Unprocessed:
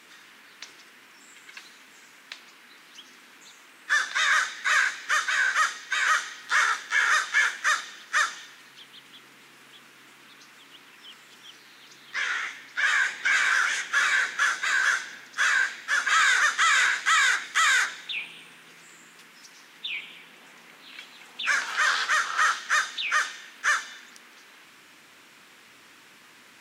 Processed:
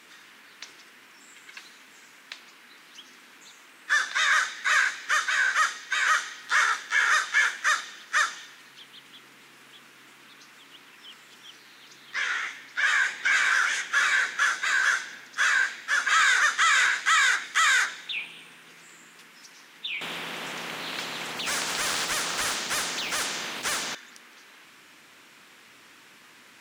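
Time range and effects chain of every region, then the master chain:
0:20.01–0:23.95: one scale factor per block 7 bits + high-shelf EQ 3,500 Hz −10.5 dB + every bin compressed towards the loudest bin 4 to 1
whole clip: no processing

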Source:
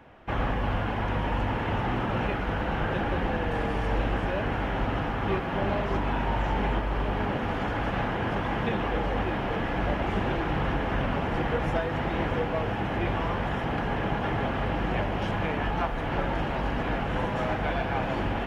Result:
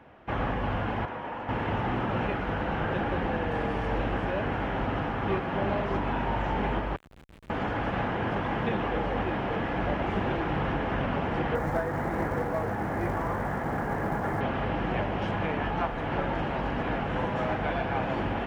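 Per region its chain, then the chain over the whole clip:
0:01.05–0:01.49: high-pass filter 660 Hz 6 dB per octave + high-shelf EQ 2,100 Hz −10.5 dB
0:06.96–0:07.50: Chebyshev high-pass filter 2,700 Hz, order 3 + comparator with hysteresis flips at −39.5 dBFS
0:11.55–0:14.41: flat-topped bell 3,500 Hz −12.5 dB 1.2 octaves + mains-hum notches 60/120/180/240/300/360/420/480 Hz + log-companded quantiser 6 bits
whole clip: high-pass filter 72 Hz 6 dB per octave; high-shelf EQ 4,200 Hz −8 dB

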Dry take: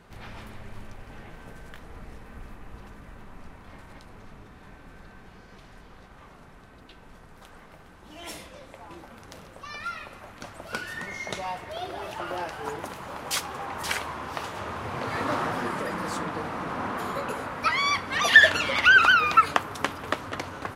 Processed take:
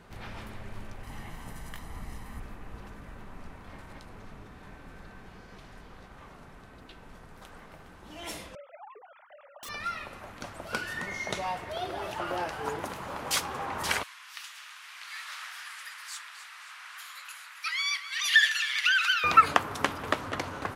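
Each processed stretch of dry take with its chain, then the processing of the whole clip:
0:01.03–0:02.40: parametric band 12,000 Hz +9.5 dB 1.7 octaves + comb filter 1 ms, depth 44%
0:08.55–0:09.69: three sine waves on the formant tracks + high-frequency loss of the air 180 metres + wrap-around overflow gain 37.5 dB
0:14.03–0:19.24: Bessel high-pass filter 2,600 Hz, order 4 + delay that swaps between a low-pass and a high-pass 133 ms, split 1,700 Hz, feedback 76%, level −10 dB
whole clip: no processing

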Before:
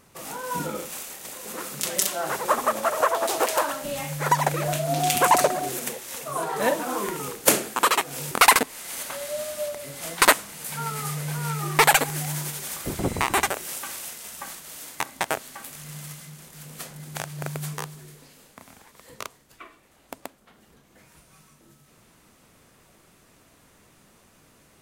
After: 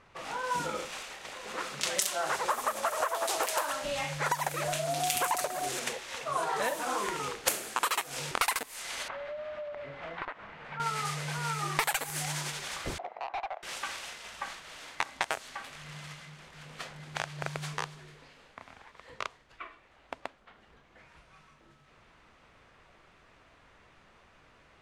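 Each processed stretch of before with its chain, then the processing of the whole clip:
0:09.08–0:10.80: low-pass filter 1,900 Hz + downward compressor 12 to 1, threshold −34 dBFS
0:12.98–0:13.63: four-pole ladder band-pass 770 Hz, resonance 70% + hard clipping −31.5 dBFS
whole clip: low-pass that shuts in the quiet parts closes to 2,700 Hz, open at −18.5 dBFS; downward compressor 16 to 1, threshold −26 dBFS; parametric band 210 Hz −11 dB 2.5 octaves; level +2.5 dB

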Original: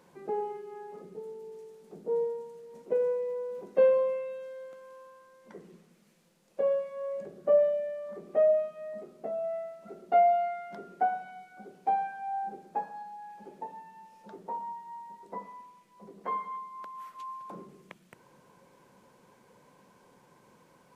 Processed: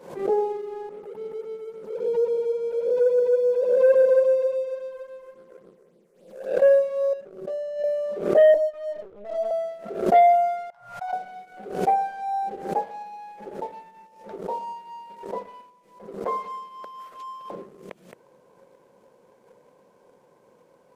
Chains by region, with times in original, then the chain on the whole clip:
0:00.89–0:06.62: spectrum smeared in time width 370 ms + all-pass phaser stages 6, 3.6 Hz, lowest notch 190–2,100 Hz + single-tap delay 319 ms −7 dB
0:07.13–0:07.84: low-shelf EQ 120 Hz +11.5 dB + downward compressor 3 to 1, threshold −29 dBFS + tuned comb filter 380 Hz, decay 0.28 s, mix 80%
0:08.54–0:09.51: volume swells 147 ms + linear-prediction vocoder at 8 kHz pitch kept + micro pitch shift up and down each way 12 cents
0:10.70–0:11.13: Chebyshev band-stop filter 120–870 Hz, order 3 + high-shelf EQ 2,600 Hz −7.5 dB + tuned comb filter 120 Hz, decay 0.16 s, mix 80%
whole clip: parametric band 510 Hz +12.5 dB 1.2 octaves; leveller curve on the samples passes 1; background raised ahead of every attack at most 95 dB per second; level −3 dB

